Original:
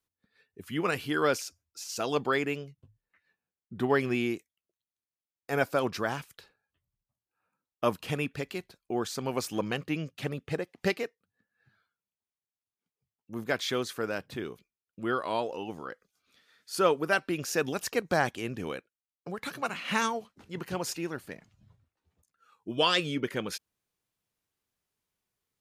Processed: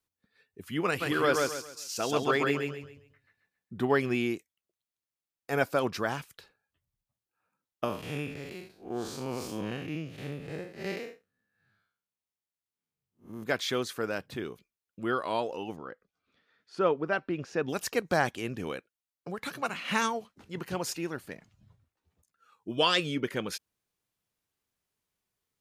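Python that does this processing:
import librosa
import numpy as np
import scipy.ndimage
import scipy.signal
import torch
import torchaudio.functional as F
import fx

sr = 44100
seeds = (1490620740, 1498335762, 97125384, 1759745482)

y = fx.echo_feedback(x, sr, ms=135, feedback_pct=32, wet_db=-3, at=(1.0, 3.79), fade=0.02)
y = fx.spec_blur(y, sr, span_ms=147.0, at=(7.84, 13.43))
y = fx.spacing_loss(y, sr, db_at_10k=27, at=(15.75, 17.68), fade=0.02)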